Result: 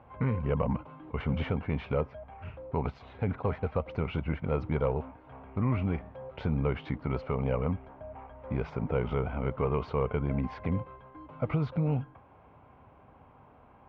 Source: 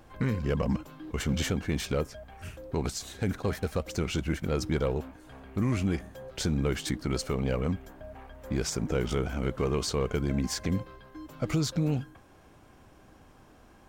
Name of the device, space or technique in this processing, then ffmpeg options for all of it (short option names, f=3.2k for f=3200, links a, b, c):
bass cabinet: -af "lowpass=5.7k,highpass=66,equalizer=f=200:t=q:w=4:g=-5,equalizer=f=330:t=q:w=4:g=-10,equalizer=f=930:t=q:w=4:g=5,equalizer=f=1.7k:t=q:w=4:g=-10,lowpass=f=2.3k:w=0.5412,lowpass=f=2.3k:w=1.3066,volume=1.5dB"